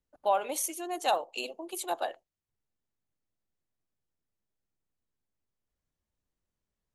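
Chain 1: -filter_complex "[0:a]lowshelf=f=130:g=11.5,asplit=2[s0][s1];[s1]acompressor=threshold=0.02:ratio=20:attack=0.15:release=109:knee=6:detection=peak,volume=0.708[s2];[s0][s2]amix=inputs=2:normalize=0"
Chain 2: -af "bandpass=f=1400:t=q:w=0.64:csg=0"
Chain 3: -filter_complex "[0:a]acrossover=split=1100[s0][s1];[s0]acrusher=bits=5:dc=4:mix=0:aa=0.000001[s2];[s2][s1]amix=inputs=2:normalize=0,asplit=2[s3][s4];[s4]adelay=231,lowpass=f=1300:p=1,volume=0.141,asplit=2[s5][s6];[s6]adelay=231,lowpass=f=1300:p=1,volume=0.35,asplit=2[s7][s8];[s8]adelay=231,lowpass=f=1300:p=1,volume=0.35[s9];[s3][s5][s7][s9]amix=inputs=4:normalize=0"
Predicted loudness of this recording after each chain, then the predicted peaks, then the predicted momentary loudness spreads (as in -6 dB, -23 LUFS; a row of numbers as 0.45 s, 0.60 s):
-30.5 LUFS, -35.5 LUFS, -32.0 LUFS; -13.5 dBFS, -17.5 dBFS, -13.5 dBFS; 8 LU, 10 LU, 10 LU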